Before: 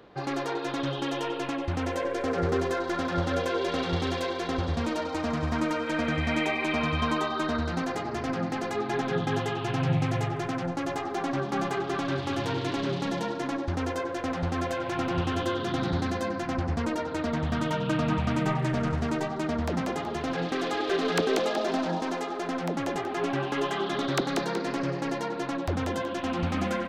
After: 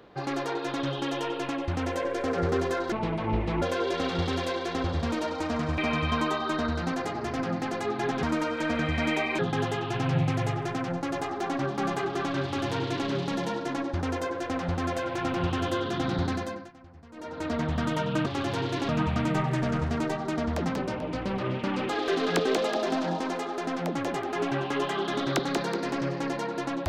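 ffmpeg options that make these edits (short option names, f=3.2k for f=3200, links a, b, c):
-filter_complex "[0:a]asplit=12[a][b][c][d][e][f][g][h][i][j][k][l];[a]atrim=end=2.924[m];[b]atrim=start=2.92:end=3.36,asetpts=PTS-STARTPTS,asetrate=27783,aresample=44100[n];[c]atrim=start=3.356:end=5.522[o];[d]atrim=start=6.678:end=9.132[p];[e]atrim=start=5.518:end=6.682[q];[f]atrim=start=9.128:end=16.46,asetpts=PTS-STARTPTS,afade=t=out:st=6.922:d=0.41:silence=0.0794328[r];[g]atrim=start=16.46:end=16.86,asetpts=PTS-STARTPTS,volume=-22dB[s];[h]atrim=start=16.86:end=18.002,asetpts=PTS-STARTPTS,afade=t=in:d=0.41:silence=0.0794328[t];[i]atrim=start=12.178:end=12.812[u];[j]atrim=start=17.998:end=19.874[v];[k]atrim=start=19.87:end=20.71,asetpts=PTS-STARTPTS,asetrate=32634,aresample=44100,atrim=end_sample=50059,asetpts=PTS-STARTPTS[w];[l]atrim=start=20.706[x];[m][n]acrossfade=d=0.004:c1=hsin:c2=hsin[y];[y][o]acrossfade=d=0.004:c1=hsin:c2=hsin[z];[z][p]acrossfade=d=0.004:c1=hsin:c2=hsin[aa];[aa][q]acrossfade=d=0.004:c1=hsin:c2=hsin[ab];[r][s][t]concat=n=3:v=0:a=1[ac];[ab][ac]acrossfade=d=0.004:c1=hsin:c2=hsin[ad];[ad][u]acrossfade=d=0.004:c1=hsin:c2=hsin[ae];[ae][v]acrossfade=d=0.004:c1=hsin:c2=hsin[af];[af][w]acrossfade=d=0.004:c1=hsin:c2=hsin[ag];[ag][x]acrossfade=d=0.004:c1=hsin:c2=hsin"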